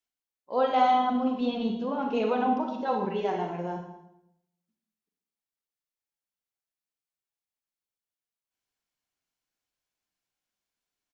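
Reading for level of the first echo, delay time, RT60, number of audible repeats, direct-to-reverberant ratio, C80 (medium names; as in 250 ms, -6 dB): -22.0 dB, 241 ms, 0.80 s, 1, 2.5 dB, 7.5 dB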